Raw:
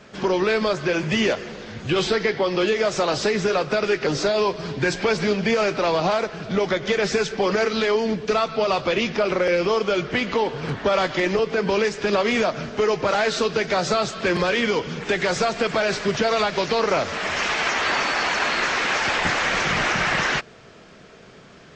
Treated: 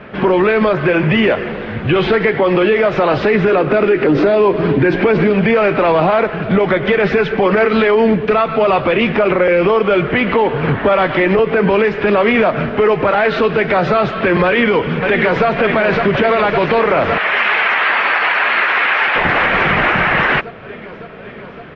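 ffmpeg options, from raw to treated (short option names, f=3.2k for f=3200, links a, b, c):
-filter_complex "[0:a]asettb=1/sr,asplit=3[a][b][c];[a]atrim=end=3.524[d];[b]atrim=start=3.52:end=5.3,asetpts=PTS-STARTPTS,afade=t=in:d=0.004:c=qsin,afade=t=out:st=1.776:d=0.004:c=qsin,equalizer=f=310:w=1.5:g=9[e];[c]atrim=start=5.296[f];[d][e]acrossfade=d=0.004:c1=hsin:c2=qsin[g];[g][f]acrossfade=d=0.004:c1=qsin:c2=hsin,asplit=2[h][i];[i]afade=t=in:st=14.46:d=0.01,afade=t=out:st=15.46:d=0.01,aecho=0:1:560|1120|1680|2240|2800|3360|3920|4480|5040|5600|6160|6720:0.398107|0.318486|0.254789|0.203831|0.163065|0.130452|0.104361|0.0834891|0.0667913|0.053433|0.0427464|0.0341971[j];[h][j]amix=inputs=2:normalize=0,asettb=1/sr,asplit=3[k][l][m];[k]atrim=end=17.184[n];[l]atrim=start=17.18:end=19.16,asetpts=PTS-STARTPTS,afade=t=in:d=0.004:c=qsin,afade=t=out:st=1.976:d=0.004:c=qsin,bandpass=f=2.4k:t=q:w=0.51[o];[m]atrim=start=19.156[p];[n][o]acrossfade=d=0.004:c1=hsin:c2=qsin[q];[q][p]acrossfade=d=0.004:c1=qsin:c2=hsin,lowpass=f=2.7k:w=0.5412,lowpass=f=2.7k:w=1.3066,alimiter=level_in=16.5dB:limit=-1dB:release=50:level=0:latency=1,volume=-4dB"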